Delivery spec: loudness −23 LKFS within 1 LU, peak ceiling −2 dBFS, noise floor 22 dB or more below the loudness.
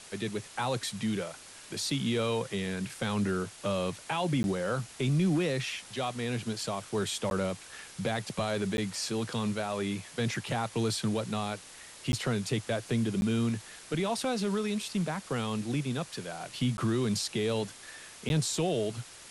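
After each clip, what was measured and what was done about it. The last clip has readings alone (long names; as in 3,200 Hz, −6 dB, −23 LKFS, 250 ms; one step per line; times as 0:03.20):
number of dropouts 7; longest dropout 11 ms; background noise floor −50 dBFS; target noise floor −54 dBFS; integrated loudness −32.0 LKFS; sample peak −19.0 dBFS; target loudness −23.0 LKFS
→ repair the gap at 0:04.43/0:07.30/0:08.77/0:12.12/0:13.21/0:16.77/0:18.29, 11 ms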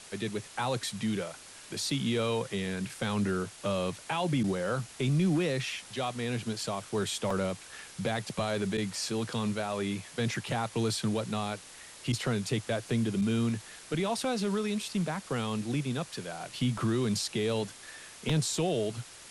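number of dropouts 0; background noise floor −50 dBFS; target noise floor −54 dBFS
→ broadband denoise 6 dB, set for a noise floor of −50 dBFS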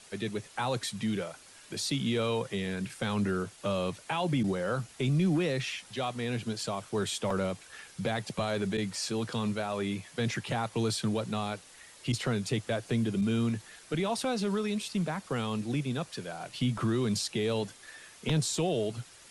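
background noise floor −54 dBFS; integrated loudness −32.0 LKFS; sample peak −16.5 dBFS; target loudness −23.0 LKFS
→ level +9 dB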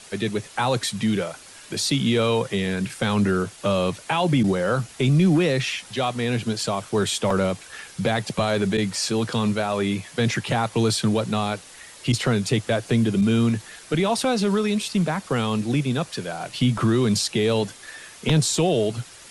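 integrated loudness −23.0 LKFS; sample peak −7.5 dBFS; background noise floor −45 dBFS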